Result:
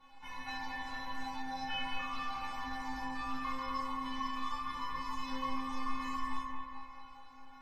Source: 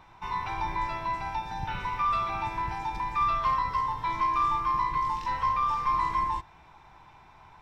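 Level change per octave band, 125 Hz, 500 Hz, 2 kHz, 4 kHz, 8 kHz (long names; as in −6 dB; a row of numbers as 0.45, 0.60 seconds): −15.0 dB, −9.0 dB, −4.5 dB, +0.5 dB, can't be measured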